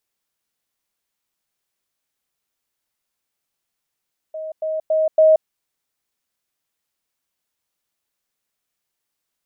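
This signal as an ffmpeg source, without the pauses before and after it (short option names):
-f lavfi -i "aevalsrc='pow(10,(-26.5+6*floor(t/0.28))/20)*sin(2*PI*630*t)*clip(min(mod(t,0.28),0.18-mod(t,0.28))/0.005,0,1)':d=1.12:s=44100"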